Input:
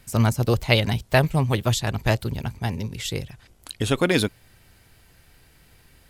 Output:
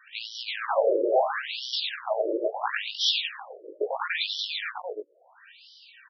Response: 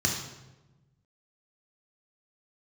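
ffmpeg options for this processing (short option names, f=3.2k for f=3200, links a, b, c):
-filter_complex "[0:a]asuperstop=centerf=2100:order=12:qfactor=6.3,acrossover=split=500[a][b];[a]acrusher=bits=4:dc=4:mix=0:aa=0.000001[c];[b]asoftclip=type=tanh:threshold=-19dB[d];[c][d]amix=inputs=2:normalize=0,asettb=1/sr,asplit=3[e][f][g];[e]atrim=end=1.284[h];[f]atrim=start=1.28:end=2.07,asetpts=PTS-STARTPTS,afade=t=in:d=0.004:c=qsin,afade=t=out:st=0.786:d=0.004:c=qsin,aderivative[i];[g]atrim=start=2.066[j];[h][i]acrossfade=d=0.004:c1=hsin:c2=qsin[k];[k][j]acrossfade=d=0.004:c1=qsin:c2=hsin,flanger=delay=16.5:depth=3.7:speed=0.54,equalizer=f=170:t=o:w=0.29:g=7.5,asplit=2[l][m];[m]aecho=0:1:90|202.5|343.1|518.9|738.6:0.631|0.398|0.251|0.158|0.1[n];[l][n]amix=inputs=2:normalize=0,acompressor=threshold=-24dB:ratio=6,alimiter=level_in=21dB:limit=-1dB:release=50:level=0:latency=1,afftfilt=real='re*between(b*sr/1024,420*pow(4200/420,0.5+0.5*sin(2*PI*0.74*pts/sr))/1.41,420*pow(4200/420,0.5+0.5*sin(2*PI*0.74*pts/sr))*1.41)':imag='im*between(b*sr/1024,420*pow(4200/420,0.5+0.5*sin(2*PI*0.74*pts/sr))/1.41,420*pow(4200/420,0.5+0.5*sin(2*PI*0.74*pts/sr))*1.41)':win_size=1024:overlap=0.75,volume=-7dB"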